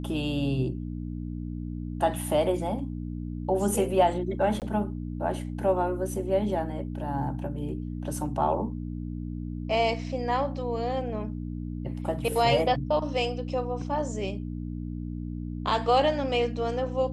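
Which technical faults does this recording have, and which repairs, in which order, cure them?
hum 60 Hz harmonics 5 -34 dBFS
4.60–4.62 s: dropout 18 ms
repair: de-hum 60 Hz, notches 5; interpolate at 4.60 s, 18 ms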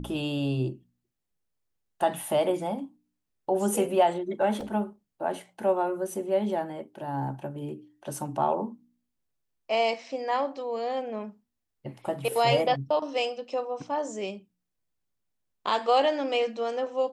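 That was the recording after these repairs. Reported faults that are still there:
nothing left

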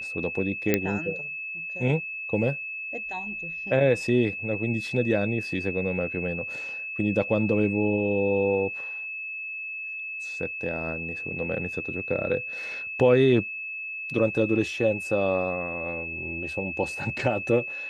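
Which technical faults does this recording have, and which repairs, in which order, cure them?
whine 2.6 kHz -32 dBFS
0.74 s: pop -7 dBFS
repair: de-click; band-stop 2.6 kHz, Q 30

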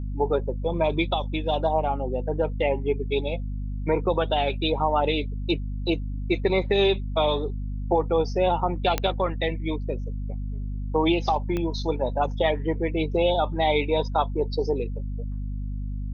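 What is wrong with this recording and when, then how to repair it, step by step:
hum 50 Hz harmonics 5 -30 dBFS
8.98 s: pop -9 dBFS
11.57 s: pop -16 dBFS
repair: de-click; de-hum 50 Hz, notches 5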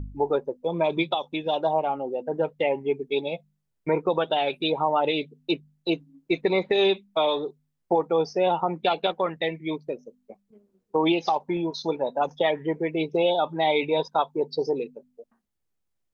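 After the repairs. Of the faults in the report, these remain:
11.57 s: pop

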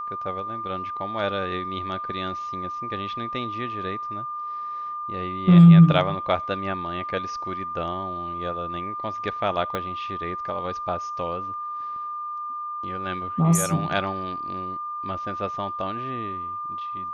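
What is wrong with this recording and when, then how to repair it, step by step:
whine 1.2 kHz -29 dBFS
9.75 s: pop -14 dBFS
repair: de-click; band-stop 1.2 kHz, Q 30

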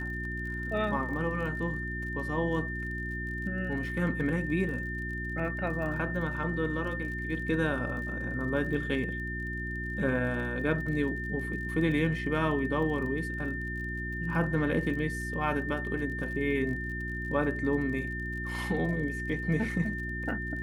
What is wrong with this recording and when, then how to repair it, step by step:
crackle 40 per s -40 dBFS
hum 60 Hz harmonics 6 -37 dBFS
whine 1.8 kHz -36 dBFS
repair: de-click; de-hum 60 Hz, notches 6; band-stop 1.8 kHz, Q 30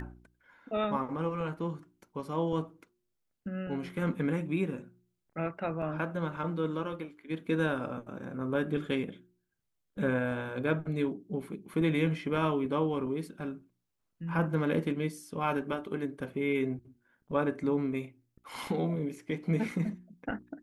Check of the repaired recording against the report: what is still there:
nothing left

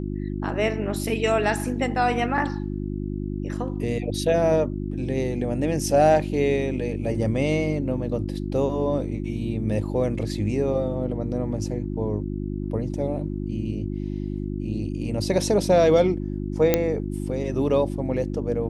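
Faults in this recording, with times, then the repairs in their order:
hum 50 Hz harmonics 7 -29 dBFS
16.74 s: pop -4 dBFS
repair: de-click; de-hum 50 Hz, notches 7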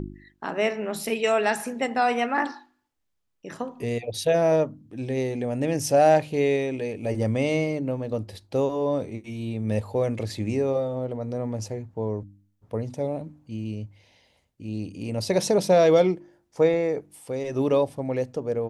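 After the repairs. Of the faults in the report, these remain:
nothing left

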